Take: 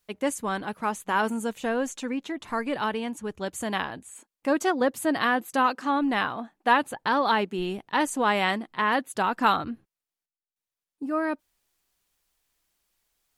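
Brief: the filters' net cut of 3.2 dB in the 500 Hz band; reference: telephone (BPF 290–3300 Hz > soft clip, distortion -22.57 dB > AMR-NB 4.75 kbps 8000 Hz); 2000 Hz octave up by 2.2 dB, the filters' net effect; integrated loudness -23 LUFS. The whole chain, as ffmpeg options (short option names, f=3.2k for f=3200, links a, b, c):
-af "highpass=290,lowpass=3.3k,equalizer=f=500:t=o:g=-3.5,equalizer=f=2k:t=o:g=3.5,asoftclip=threshold=-10.5dB,volume=6dB" -ar 8000 -c:a libopencore_amrnb -b:a 4750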